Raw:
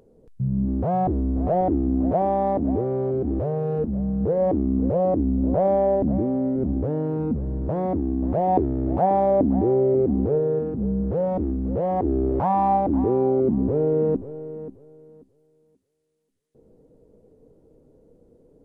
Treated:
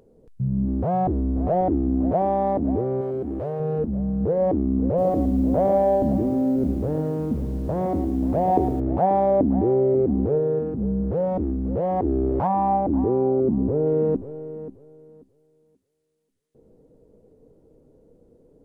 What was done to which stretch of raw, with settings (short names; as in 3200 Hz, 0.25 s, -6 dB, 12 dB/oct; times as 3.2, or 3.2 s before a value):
3.01–3.6 tilt +2 dB/oct
4.87–8.8 lo-fi delay 0.111 s, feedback 35%, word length 8-bit, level -9 dB
12.47–13.86 high shelf 2000 Hz -10 dB